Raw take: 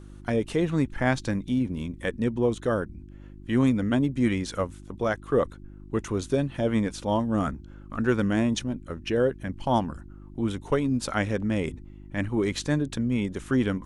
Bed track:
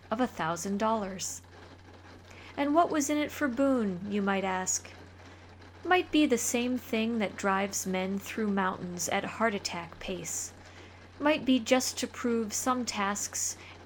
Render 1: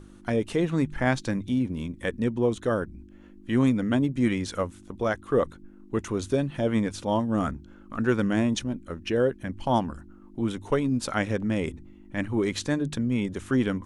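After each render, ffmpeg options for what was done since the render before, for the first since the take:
-af "bandreject=f=50:t=h:w=4,bandreject=f=100:t=h:w=4,bandreject=f=150:t=h:w=4"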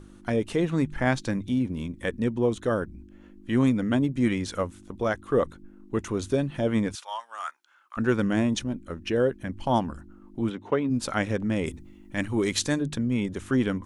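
-filter_complex "[0:a]asettb=1/sr,asplit=3[a][b][c];[a]atrim=end=6.954[d];[b]atrim=start=6.95:end=7.97,asetpts=PTS-STARTPTS,afade=t=in:d=0.004:c=qsin,afade=t=out:st=1.016:d=0.004:c=qsin,highpass=f=960:w=0.5412,highpass=f=960:w=1.3066[e];[c]atrim=start=7.966[f];[d][e]acrossfade=d=0.004:c1=hsin:c2=qsin[g];[g][f]acrossfade=d=0.004:c1=qsin:c2=hsin,asplit=3[h][i][j];[h]afade=t=out:st=10.49:d=0.02[k];[i]highpass=160,lowpass=3k,afade=t=in:st=10.49:d=0.02,afade=t=out:st=10.89:d=0.02[l];[j]afade=t=in:st=10.89:d=0.02[m];[k][l][m]amix=inputs=3:normalize=0,asettb=1/sr,asplit=3[n][o][p];[n]atrim=end=11.664[q];[o]atrim=start=11.66:end=12.8,asetpts=PTS-STARTPTS,afade=t=in:d=0.004:c=qsin,afade=t=out:st=1.136:d=0.004:c=qsin,highshelf=f=3.5k:g=9.5[r];[p]atrim=start=12.796[s];[q][r]acrossfade=d=0.004:c1=hsin:c2=qsin[t];[t][s]acrossfade=d=0.004:c1=qsin:c2=hsin"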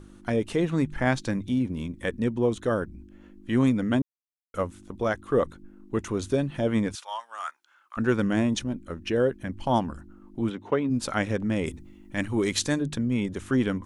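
-filter_complex "[0:a]asplit=3[a][b][c];[a]atrim=end=4.02,asetpts=PTS-STARTPTS,afade=t=out:st=4.016:d=0.004:c=hsin[d];[b]atrim=start=4.02:end=4.54,asetpts=PTS-STARTPTS,volume=0[e];[c]atrim=start=4.54,asetpts=PTS-STARTPTS,afade=t=in:d=0.004:c=hsin[f];[d][e][f]concat=n=3:v=0:a=1"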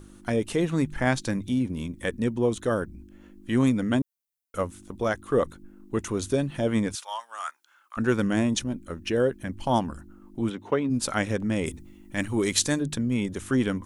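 -af "highshelf=f=7.5k:g=11.5"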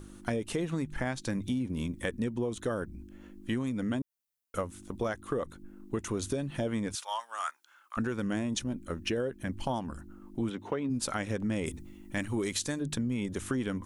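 -af "alimiter=limit=-17dB:level=0:latency=1:release=364,acompressor=threshold=-28dB:ratio=6"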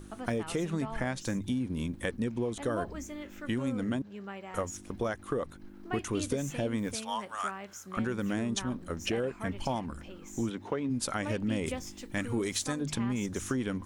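-filter_complex "[1:a]volume=-13.5dB[a];[0:a][a]amix=inputs=2:normalize=0"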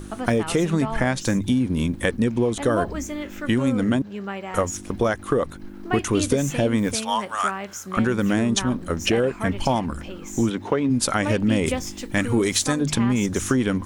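-af "volume=11dB"

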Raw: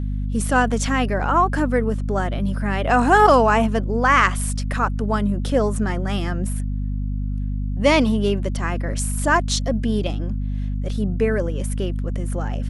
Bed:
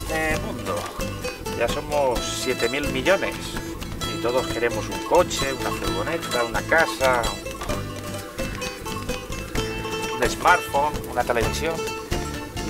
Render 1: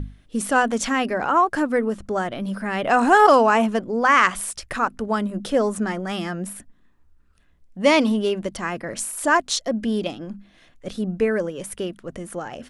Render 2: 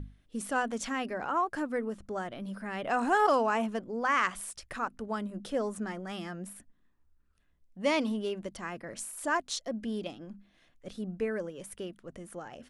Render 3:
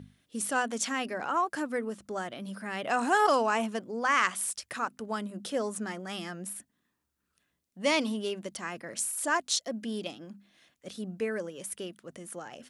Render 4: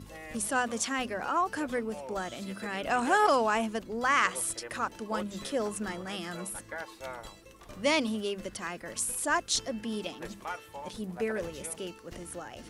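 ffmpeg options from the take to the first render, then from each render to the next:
-af "bandreject=f=50:t=h:w=6,bandreject=f=100:t=h:w=6,bandreject=f=150:t=h:w=6,bandreject=f=200:t=h:w=6,bandreject=f=250:t=h:w=6"
-af "volume=-11.5dB"
-af "highpass=130,highshelf=f=2.8k:g=9"
-filter_complex "[1:a]volume=-21.5dB[a];[0:a][a]amix=inputs=2:normalize=0"

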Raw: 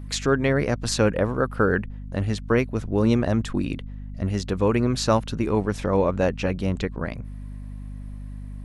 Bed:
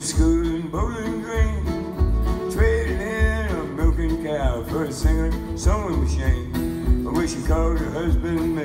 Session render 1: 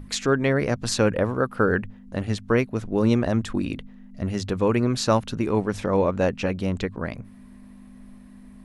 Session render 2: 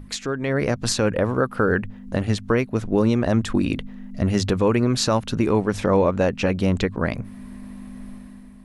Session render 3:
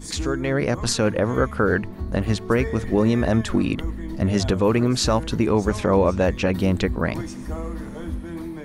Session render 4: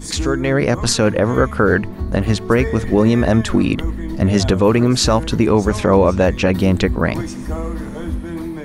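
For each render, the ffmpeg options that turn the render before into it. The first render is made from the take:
-af "bandreject=f=50:t=h:w=6,bandreject=f=100:t=h:w=6,bandreject=f=150:t=h:w=6"
-af "alimiter=limit=-17dB:level=0:latency=1:release=421,dynaudnorm=f=110:g=9:m=8.5dB"
-filter_complex "[1:a]volume=-10.5dB[a];[0:a][a]amix=inputs=2:normalize=0"
-af "volume=6dB,alimiter=limit=-3dB:level=0:latency=1"

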